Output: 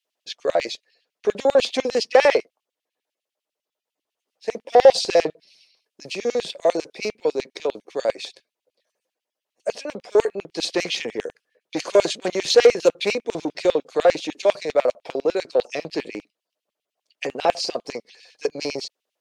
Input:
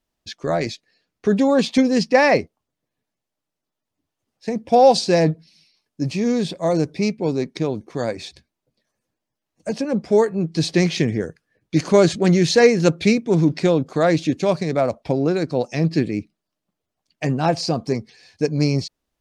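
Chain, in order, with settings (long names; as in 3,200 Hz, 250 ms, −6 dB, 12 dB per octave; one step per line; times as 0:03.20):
harmonic generator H 5 −19 dB, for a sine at −2 dBFS
auto-filter high-pass square 10 Hz 500–2,800 Hz
level −5.5 dB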